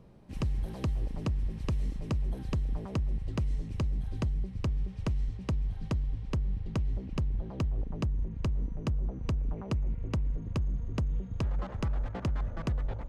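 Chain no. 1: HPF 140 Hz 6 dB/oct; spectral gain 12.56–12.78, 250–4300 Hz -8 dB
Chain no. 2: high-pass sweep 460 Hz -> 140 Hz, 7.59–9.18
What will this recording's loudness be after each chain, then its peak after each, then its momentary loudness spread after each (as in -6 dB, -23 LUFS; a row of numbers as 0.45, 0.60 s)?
-39.5, -37.5 LUFS; -22.5, -16.5 dBFS; 1, 10 LU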